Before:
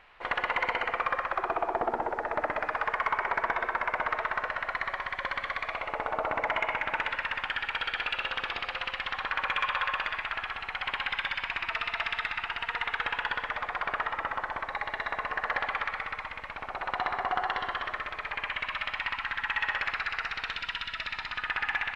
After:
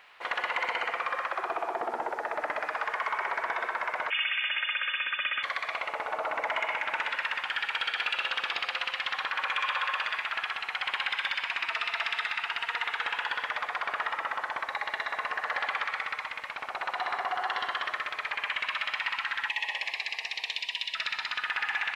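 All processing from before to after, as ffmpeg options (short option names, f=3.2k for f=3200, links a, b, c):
-filter_complex "[0:a]asettb=1/sr,asplit=3[a][b][c];[a]atrim=end=4.104[d];[b]atrim=start=4.1:end=5.43,asetpts=PTS-STARTPTS,afade=t=in:d=0.004:c=qsin,afade=t=out:st=1.326:d=0.004:c=qsin,aecho=1:1:3.1:0.8,atrim=end_sample=58653,lowpass=f=3k:t=q:w=0.5098,lowpass=f=3k:t=q:w=0.6013,lowpass=f=3k:t=q:w=0.9,lowpass=f=3k:t=q:w=2.563,afreqshift=-3500[e];[c]atrim=start=5.426[f];[d][e]acrossfade=d=0.004:c1=hsin:c2=qsin[g];[g][f]acrossfade=d=0.004:c1=qsin:c2=hsin,asettb=1/sr,asplit=3[h][i][j];[h]atrim=end=19.494[k];[i]atrim=start=19.49:end=20.95,asetpts=PTS-STARTPTS,afade=t=in:d=0.004:c=qsin,afade=t=out:st=1.456:d=0.004:c=qsin,asuperstop=centerf=1400:order=4:qfactor=1.3,lowshelf=f=290:g=-11[l];[j]atrim=start=20.946[m];[k][l]acrossfade=d=0.004:c1=hsin:c2=qsin[n];[n][m]acrossfade=d=0.004:c1=qsin:c2=hsin,highpass=f=510:p=1,alimiter=limit=-23dB:level=0:latency=1:release=10,highshelf=f=4.4k:g=11.5,volume=1dB"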